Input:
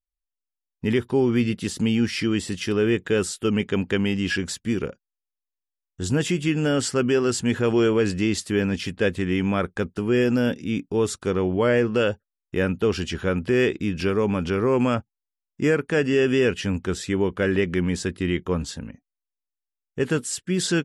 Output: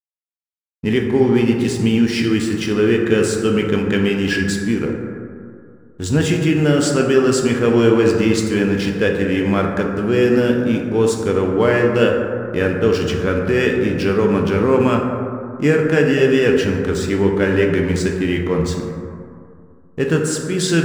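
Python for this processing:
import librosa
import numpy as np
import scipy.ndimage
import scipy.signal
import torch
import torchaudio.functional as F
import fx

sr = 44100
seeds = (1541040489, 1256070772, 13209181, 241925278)

y = fx.backlash(x, sr, play_db=-38.0)
y = fx.rev_plate(y, sr, seeds[0], rt60_s=2.4, hf_ratio=0.3, predelay_ms=0, drr_db=1.0)
y = y * librosa.db_to_amplitude(4.0)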